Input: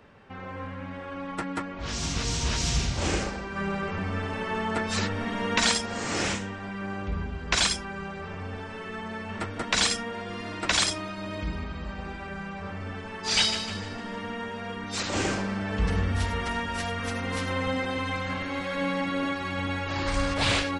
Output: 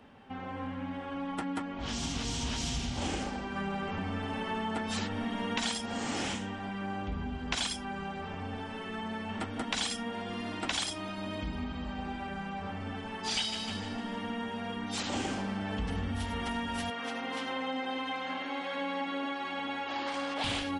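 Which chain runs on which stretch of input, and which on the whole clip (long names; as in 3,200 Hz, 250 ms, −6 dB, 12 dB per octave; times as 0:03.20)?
0:16.90–0:20.44: high-pass filter 380 Hz + high-frequency loss of the air 74 metres
whole clip: thirty-one-band graphic EQ 250 Hz +12 dB, 800 Hz +8 dB, 3,150 Hz +7 dB, 10,000 Hz +7 dB; downward compressor 3 to 1, threshold −27 dBFS; level −4.5 dB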